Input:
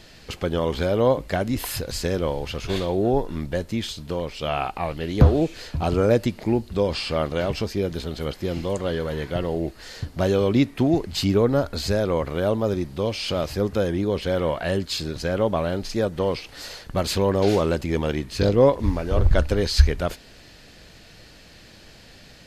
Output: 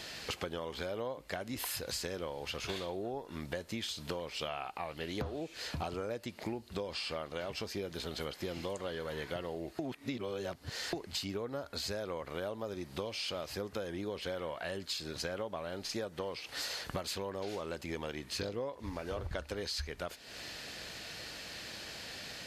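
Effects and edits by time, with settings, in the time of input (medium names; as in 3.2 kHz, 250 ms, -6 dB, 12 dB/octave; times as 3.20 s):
9.79–10.93 s: reverse
whole clip: high-pass 52 Hz; bass shelf 380 Hz -11 dB; compression 16:1, threshold -40 dBFS; trim +5 dB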